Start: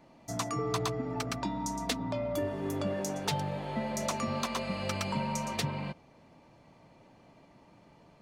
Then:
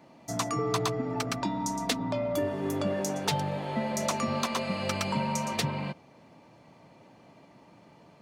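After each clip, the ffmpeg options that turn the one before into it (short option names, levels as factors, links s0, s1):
-af "highpass=100,volume=1.5"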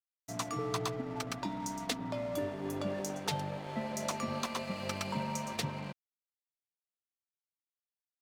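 -af "aeval=exprs='sgn(val(0))*max(abs(val(0))-0.00708,0)':c=same,volume=0.562"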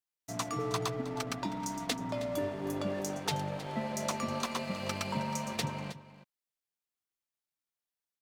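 -af "aecho=1:1:316:0.168,volume=1.19"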